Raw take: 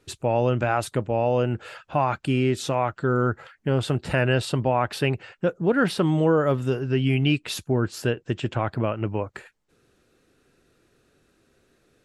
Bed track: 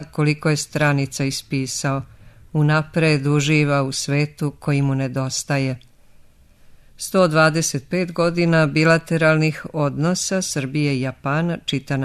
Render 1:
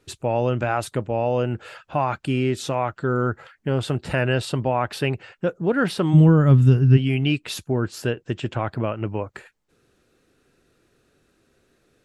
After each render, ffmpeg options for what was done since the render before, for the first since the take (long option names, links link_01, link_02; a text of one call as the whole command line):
ffmpeg -i in.wav -filter_complex "[0:a]asplit=3[link_01][link_02][link_03];[link_01]afade=type=out:start_time=6.13:duration=0.02[link_04];[link_02]asubboost=boost=8.5:cutoff=180,afade=type=in:start_time=6.13:duration=0.02,afade=type=out:start_time=6.96:duration=0.02[link_05];[link_03]afade=type=in:start_time=6.96:duration=0.02[link_06];[link_04][link_05][link_06]amix=inputs=3:normalize=0" out.wav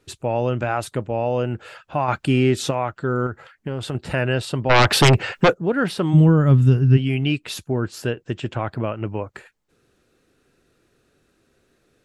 ffmpeg -i in.wav -filter_complex "[0:a]asettb=1/sr,asplit=3[link_01][link_02][link_03];[link_01]atrim=end=2.084[link_04];[link_02]atrim=start=2.08:end=2.71,asetpts=PTS-STARTPTS,afade=type=in:duration=0.004:curve=qsin,afade=type=out:start_time=0.626:duration=0.004:curve=qsin,acontrast=23[link_05];[link_03]atrim=start=2.706[link_06];[link_04][link_05]acrossfade=duration=0.004:curve1=hsin:curve2=qsin[link_07];[link_07][link_06]acrossfade=duration=0.004:curve1=qsin:curve2=hsin,asettb=1/sr,asplit=3[link_08][link_09][link_10];[link_08]atrim=end=3.264[link_11];[link_09]atrim=start=3.26:end=3.95,asetpts=PTS-STARTPTS,afade=type=in:duration=0.004:curve=qsin,afade=type=out:start_time=0.686:duration=0.004:curve=qsin,acompressor=threshold=-22dB:ratio=6:attack=3.2:release=140:knee=1:detection=peak[link_12];[link_10]atrim=start=3.946[link_13];[link_11][link_12]acrossfade=duration=0.004:curve1=hsin:curve2=qsin[link_14];[link_14][link_13]acrossfade=duration=0.004:curve1=qsin:curve2=hsin,asplit=3[link_15][link_16][link_17];[link_15]afade=type=out:start_time=4.69:duration=0.02[link_18];[link_16]aeval=exprs='0.376*sin(PI/2*3.98*val(0)/0.376)':channel_layout=same,afade=type=in:start_time=4.69:duration=0.02,afade=type=out:start_time=5.53:duration=0.02[link_19];[link_17]afade=type=in:start_time=5.53:duration=0.02[link_20];[link_18][link_19][link_20]amix=inputs=3:normalize=0" out.wav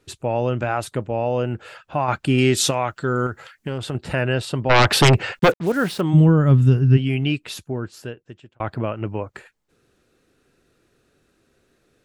ffmpeg -i in.wav -filter_complex "[0:a]asettb=1/sr,asplit=3[link_01][link_02][link_03];[link_01]atrim=end=2.384[link_04];[link_02]atrim=start=2.38:end=3.78,asetpts=PTS-STARTPTS,afade=type=in:duration=0.004:curve=qsin,afade=type=out:start_time=1.396:duration=0.004:curve=qsin,highshelf=frequency=2800:gain=11.5[link_05];[link_03]atrim=start=3.776[link_06];[link_04][link_05]acrossfade=duration=0.004:curve1=hsin:curve2=qsin[link_07];[link_07][link_06]acrossfade=duration=0.004:curve1=qsin:curve2=hsin,asettb=1/sr,asplit=3[link_08][link_09][link_10];[link_08]atrim=end=5.394[link_11];[link_09]atrim=start=5.39:end=6.01,asetpts=PTS-STARTPTS,afade=type=in:duration=0.004:curve=qsin,afade=type=out:start_time=0.616:duration=0.004:curve=qsin,acrusher=bits=5:mix=0:aa=0.5[link_12];[link_10]atrim=start=6.006[link_13];[link_11][link_12]acrossfade=duration=0.004:curve1=hsin:curve2=qsin[link_14];[link_14][link_13]acrossfade=duration=0.004:curve1=qsin:curve2=hsin,asplit=2[link_15][link_16];[link_15]atrim=end=8.6,asetpts=PTS-STARTPTS,afade=type=out:start_time=7.22:duration=1.38[link_17];[link_16]atrim=start=8.6,asetpts=PTS-STARTPTS,afade=type=in:duration=0.004:curve=hsin[link_18];[link_17][link_18]concat=n=2:v=0:a=1" out.wav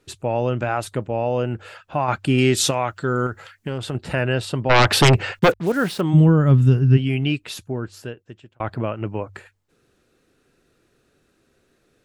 ffmpeg -i in.wav -af "bandreject=frequency=48.63:width_type=h:width=4,bandreject=frequency=97.26:width_type=h:width=4" out.wav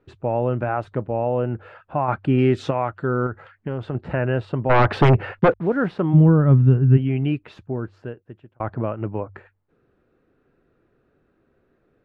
ffmpeg -i in.wav -af "lowpass=1500" out.wav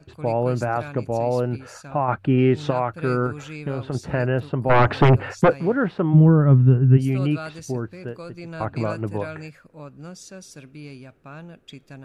ffmpeg -i in.wav -i bed.wav -filter_complex "[1:a]volume=-19.5dB[link_01];[0:a][link_01]amix=inputs=2:normalize=0" out.wav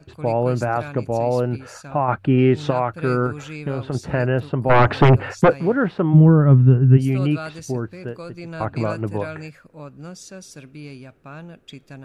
ffmpeg -i in.wav -af "volume=2dB" out.wav